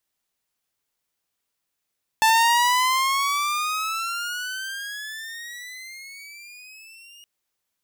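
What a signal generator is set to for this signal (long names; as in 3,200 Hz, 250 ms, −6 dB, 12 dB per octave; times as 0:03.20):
pitch glide with a swell saw, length 5.02 s, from 879 Hz, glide +20.5 semitones, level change −31 dB, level −11.5 dB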